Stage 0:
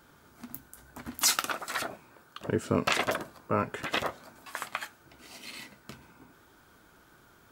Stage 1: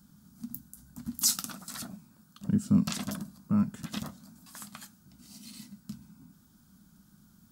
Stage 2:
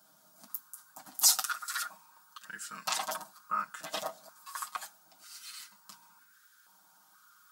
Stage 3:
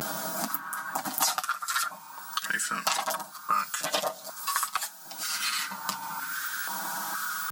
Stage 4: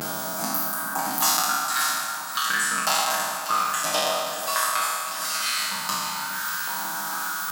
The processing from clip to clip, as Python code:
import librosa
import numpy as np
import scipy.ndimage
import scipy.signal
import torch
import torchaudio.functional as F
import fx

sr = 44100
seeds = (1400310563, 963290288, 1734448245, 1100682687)

y1 = fx.curve_eq(x, sr, hz=(120.0, 200.0, 400.0, 660.0, 1300.0, 2200.0, 5000.0, 10000.0), db=(0, 13, -19, -15, -13, -18, -1, 1))
y2 = y1 + 0.95 * np.pad(y1, (int(6.4 * sr / 1000.0), 0))[:len(y1)]
y2 = fx.filter_held_highpass(y2, sr, hz=2.1, low_hz=650.0, high_hz=1600.0)
y3 = fx.vibrato(y2, sr, rate_hz=0.46, depth_cents=51.0)
y3 = fx.band_squash(y3, sr, depth_pct=100)
y3 = y3 * librosa.db_to_amplitude(9.0)
y4 = fx.spec_trails(y3, sr, decay_s=1.73)
y4 = fx.dmg_crackle(y4, sr, seeds[0], per_s=75.0, level_db=-36.0)
y4 = fx.echo_split(y4, sr, split_hz=860.0, low_ms=414, high_ms=591, feedback_pct=52, wet_db=-10.0)